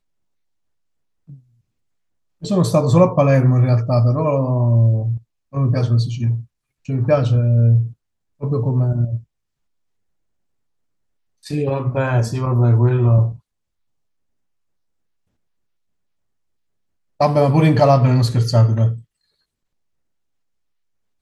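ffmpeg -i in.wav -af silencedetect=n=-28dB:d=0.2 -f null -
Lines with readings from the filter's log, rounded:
silence_start: 0.00
silence_end: 2.43 | silence_duration: 2.43
silence_start: 5.18
silence_end: 5.54 | silence_duration: 0.37
silence_start: 6.41
silence_end: 6.89 | silence_duration: 0.48
silence_start: 7.88
silence_end: 8.42 | silence_duration: 0.54
silence_start: 9.19
silence_end: 11.47 | silence_duration: 2.28
silence_start: 13.32
silence_end: 17.21 | silence_duration: 3.88
silence_start: 18.97
silence_end: 21.21 | silence_duration: 2.24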